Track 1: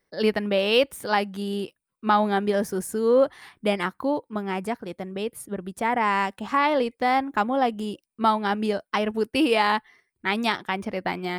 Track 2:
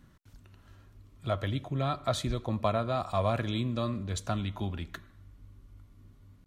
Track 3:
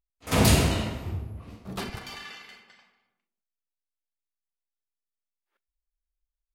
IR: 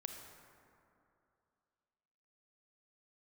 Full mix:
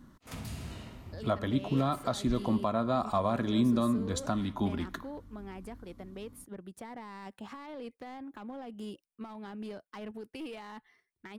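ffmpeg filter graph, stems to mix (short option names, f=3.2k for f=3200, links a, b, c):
-filter_complex "[0:a]alimiter=limit=-20.5dB:level=0:latency=1:release=17,aeval=exprs='clip(val(0),-1,0.0501)':c=same,adelay=1000,volume=-10dB[a];[1:a]equalizer=f=100:t=o:w=0.67:g=-6,equalizer=f=250:t=o:w=0.67:g=9,equalizer=f=1k:t=o:w=0.67:g=5,equalizer=f=2.5k:t=o:w=0.67:g=-6,volume=1.5dB[b];[2:a]highpass=48,volume=-13dB,asplit=2[c][d];[d]volume=-13.5dB[e];[a][c]amix=inputs=2:normalize=0,acrossover=split=390[f][g];[g]acompressor=threshold=-43dB:ratio=6[h];[f][h]amix=inputs=2:normalize=0,alimiter=level_in=9dB:limit=-24dB:level=0:latency=1:release=477,volume=-9dB,volume=0dB[i];[3:a]atrim=start_sample=2205[j];[e][j]afir=irnorm=-1:irlink=0[k];[b][i][k]amix=inputs=3:normalize=0,alimiter=limit=-17.5dB:level=0:latency=1:release=350"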